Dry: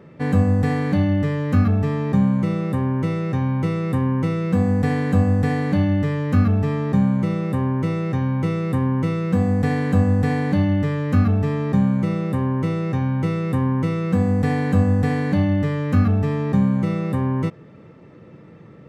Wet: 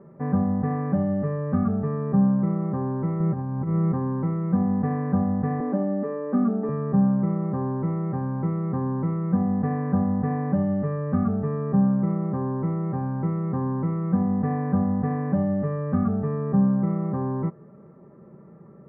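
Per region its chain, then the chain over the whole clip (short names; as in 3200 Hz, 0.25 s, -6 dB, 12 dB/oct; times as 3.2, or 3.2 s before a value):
3.2–3.92 negative-ratio compressor -23 dBFS, ratio -0.5 + low shelf 200 Hz +6.5 dB
5.6–6.69 steep high-pass 220 Hz 48 dB/oct + tilt -2.5 dB/oct
whole clip: LPF 1300 Hz 24 dB/oct; low shelf 130 Hz -3.5 dB; comb 5.1 ms, depth 59%; gain -4 dB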